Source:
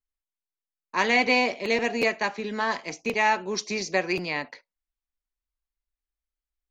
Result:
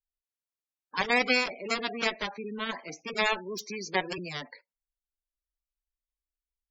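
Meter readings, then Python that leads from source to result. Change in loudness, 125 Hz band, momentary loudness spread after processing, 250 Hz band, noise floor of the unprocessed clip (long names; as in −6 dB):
−5.0 dB, −4.0 dB, 12 LU, −6.0 dB, below −85 dBFS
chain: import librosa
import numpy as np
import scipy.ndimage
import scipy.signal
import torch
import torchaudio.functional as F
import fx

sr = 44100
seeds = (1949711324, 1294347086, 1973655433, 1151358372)

y = fx.cheby_harmonics(x, sr, harmonics=(4, 6, 7), levels_db=(-26, -36, -11), full_scale_db=-8.5)
y = fx.spec_gate(y, sr, threshold_db=-15, keep='strong')
y = y * 10.0 ** (-3.0 / 20.0)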